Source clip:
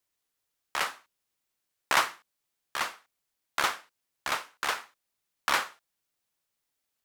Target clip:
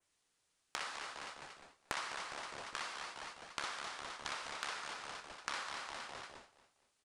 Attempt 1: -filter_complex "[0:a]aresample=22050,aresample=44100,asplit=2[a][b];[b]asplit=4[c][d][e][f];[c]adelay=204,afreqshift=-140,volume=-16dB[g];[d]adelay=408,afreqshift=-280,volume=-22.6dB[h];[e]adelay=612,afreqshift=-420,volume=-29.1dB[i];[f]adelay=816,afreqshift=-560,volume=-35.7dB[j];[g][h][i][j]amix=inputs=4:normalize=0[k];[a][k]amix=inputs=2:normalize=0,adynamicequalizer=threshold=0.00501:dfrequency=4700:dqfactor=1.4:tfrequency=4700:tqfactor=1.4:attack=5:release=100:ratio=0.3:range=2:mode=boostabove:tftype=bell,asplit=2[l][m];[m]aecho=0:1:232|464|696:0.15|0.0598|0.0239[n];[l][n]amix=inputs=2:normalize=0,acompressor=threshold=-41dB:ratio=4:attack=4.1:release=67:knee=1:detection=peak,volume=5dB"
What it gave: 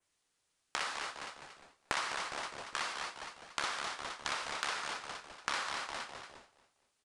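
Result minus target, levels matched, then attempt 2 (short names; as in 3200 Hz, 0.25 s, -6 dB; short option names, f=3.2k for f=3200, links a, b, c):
compressor: peak gain reduction -5.5 dB
-filter_complex "[0:a]aresample=22050,aresample=44100,asplit=2[a][b];[b]asplit=4[c][d][e][f];[c]adelay=204,afreqshift=-140,volume=-16dB[g];[d]adelay=408,afreqshift=-280,volume=-22.6dB[h];[e]adelay=612,afreqshift=-420,volume=-29.1dB[i];[f]adelay=816,afreqshift=-560,volume=-35.7dB[j];[g][h][i][j]amix=inputs=4:normalize=0[k];[a][k]amix=inputs=2:normalize=0,adynamicequalizer=threshold=0.00501:dfrequency=4700:dqfactor=1.4:tfrequency=4700:tqfactor=1.4:attack=5:release=100:ratio=0.3:range=2:mode=boostabove:tftype=bell,asplit=2[l][m];[m]aecho=0:1:232|464|696:0.15|0.0598|0.0239[n];[l][n]amix=inputs=2:normalize=0,acompressor=threshold=-48.5dB:ratio=4:attack=4.1:release=67:knee=1:detection=peak,volume=5dB"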